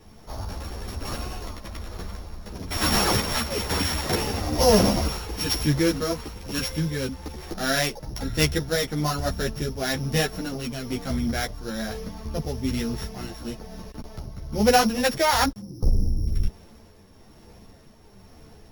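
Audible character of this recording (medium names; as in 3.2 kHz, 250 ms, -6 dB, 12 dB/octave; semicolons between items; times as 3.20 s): a buzz of ramps at a fixed pitch in blocks of 8 samples; tremolo triangle 1.1 Hz, depth 45%; a shimmering, thickened sound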